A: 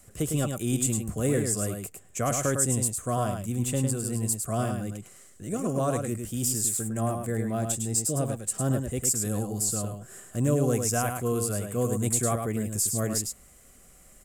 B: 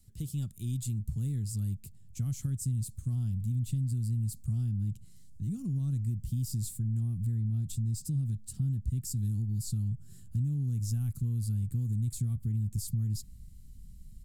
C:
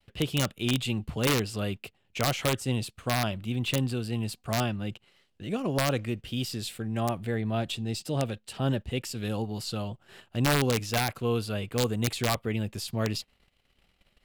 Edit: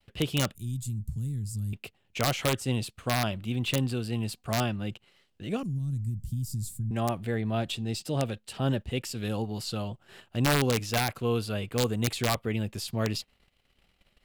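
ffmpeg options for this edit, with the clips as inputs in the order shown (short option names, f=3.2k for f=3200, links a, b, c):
-filter_complex "[1:a]asplit=2[a][b];[2:a]asplit=3[c][d][e];[c]atrim=end=0.552[f];[a]atrim=start=0.548:end=1.732[g];[d]atrim=start=1.728:end=5.632[h];[b]atrim=start=5.628:end=6.912[i];[e]atrim=start=6.908[j];[f][g]acrossfade=d=0.004:c1=hsin:c2=hsin[k];[k][h]acrossfade=d=0.004:c1=hsin:c2=hsin[l];[l][i]acrossfade=d=0.004:c1=hsin:c2=hsin[m];[m][j]acrossfade=d=0.004:c1=hsin:c2=hsin"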